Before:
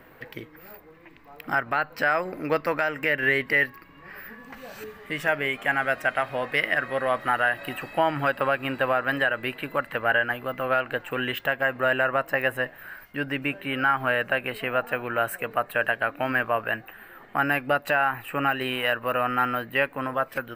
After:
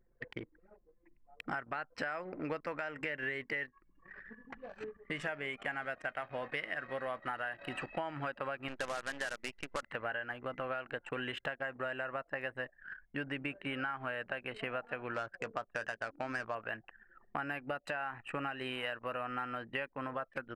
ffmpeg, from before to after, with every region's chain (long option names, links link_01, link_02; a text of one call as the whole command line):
ffmpeg -i in.wav -filter_complex "[0:a]asettb=1/sr,asplit=3[link_01][link_02][link_03];[link_01]atrim=end=8.684[link_04];[link_02]atrim=start=8.68:end=9.83,asetpts=PTS-STARTPTS,afade=type=in:duration=0.004:curve=qsin,afade=type=out:start_time=1.146:duration=0.004:curve=qsin,equalizer=frequency=100:width_type=o:width=1.9:gain=-9.5,acrusher=bits=5:dc=4:mix=0:aa=0.000001[link_05];[link_03]atrim=start=9.826[link_06];[link_04][link_05]acrossfade=duration=0.004:curve1=hsin:curve2=qsin[link_07];[link_07][link_06]acrossfade=duration=0.004:curve1=qsin:curve2=hsin,asettb=1/sr,asplit=3[link_08][link_09][link_10];[link_08]atrim=end=15.144[link_11];[link_09]atrim=start=15.14:end=16.55,asetpts=PTS-STARTPTS,afade=type=in:duration=0.004:curve=qsin,afade=type=out:start_time=1.406:duration=0.004:curve=qsin,lowpass=9100,adynamicsmooth=sensitivity=3:basefreq=1500,asplit=2[link_12][link_13];[link_13]adelay=18,volume=-14dB[link_14];[link_12][link_14]amix=inputs=2:normalize=0,atrim=end_sample=62181[link_15];[link_10]atrim=start=16.546[link_16];[link_11][link_15]acrossfade=duration=0.004:curve1=hsin:curve2=qsin[link_17];[link_17][link_16]acrossfade=duration=0.004:curve1=qsin:curve2=hsin,lowpass=frequency=9500:width=0.5412,lowpass=frequency=9500:width=1.3066,anlmdn=1,acompressor=threshold=-32dB:ratio=6,volume=-3.5dB" out.wav